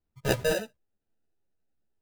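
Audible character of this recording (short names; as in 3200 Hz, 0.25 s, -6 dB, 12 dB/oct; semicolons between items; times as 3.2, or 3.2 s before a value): aliases and images of a low sample rate 1100 Hz, jitter 0%; a shimmering, thickened sound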